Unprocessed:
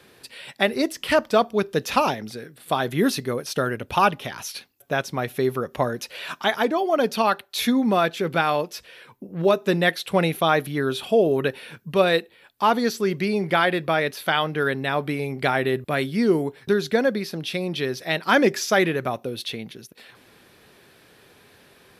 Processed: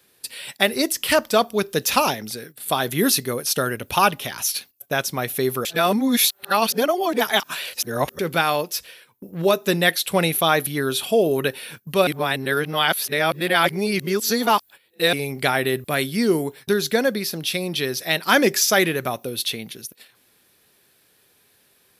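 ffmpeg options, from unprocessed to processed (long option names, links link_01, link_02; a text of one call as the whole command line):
ffmpeg -i in.wav -filter_complex "[0:a]asplit=5[link_01][link_02][link_03][link_04][link_05];[link_01]atrim=end=5.652[link_06];[link_02]atrim=start=5.648:end=8.192,asetpts=PTS-STARTPTS,areverse[link_07];[link_03]atrim=start=8.188:end=12.072[link_08];[link_04]atrim=start=12.068:end=15.132,asetpts=PTS-STARTPTS,areverse[link_09];[link_05]atrim=start=15.128[link_10];[link_06][link_07]acrossfade=duration=0.004:curve1=hsin:curve2=hsin[link_11];[link_11][link_08]acrossfade=duration=0.004:curve1=hsin:curve2=hsin[link_12];[link_12][link_09]acrossfade=duration=0.004:curve1=hsin:curve2=hsin[link_13];[link_13][link_10]acrossfade=duration=0.004:curve1=hsin:curve2=hsin,aemphasis=mode=production:type=75kf,agate=range=-12dB:threshold=-40dB:ratio=16:detection=peak" out.wav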